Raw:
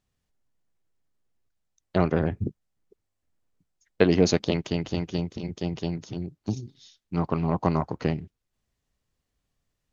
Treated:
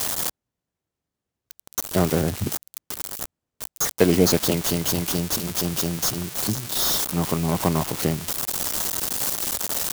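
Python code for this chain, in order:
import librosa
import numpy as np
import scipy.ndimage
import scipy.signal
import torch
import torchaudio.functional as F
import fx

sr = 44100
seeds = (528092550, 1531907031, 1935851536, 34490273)

p1 = x + 0.5 * 10.0 ** (-15.0 / 20.0) * np.diff(np.sign(x), prepend=np.sign(x[:1]))
p2 = scipy.signal.sosfilt(scipy.signal.butter(2, 55.0, 'highpass', fs=sr, output='sos'), p1)
p3 = fx.sample_hold(p2, sr, seeds[0], rate_hz=2600.0, jitter_pct=0)
y = p2 + (p3 * librosa.db_to_amplitude(-10.0))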